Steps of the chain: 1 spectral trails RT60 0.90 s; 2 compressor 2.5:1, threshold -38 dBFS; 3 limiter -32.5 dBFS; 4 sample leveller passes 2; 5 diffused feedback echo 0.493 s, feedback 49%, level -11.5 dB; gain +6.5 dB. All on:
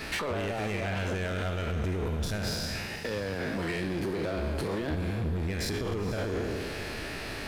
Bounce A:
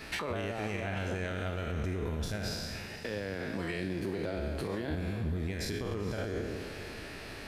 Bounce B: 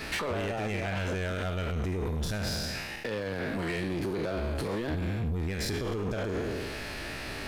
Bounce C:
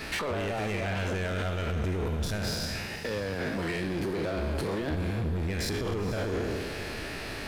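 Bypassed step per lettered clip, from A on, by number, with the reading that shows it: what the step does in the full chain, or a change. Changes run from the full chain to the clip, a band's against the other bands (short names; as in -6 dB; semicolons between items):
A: 4, crest factor change +3.0 dB; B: 5, echo-to-direct -10.5 dB to none; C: 2, mean gain reduction 7.0 dB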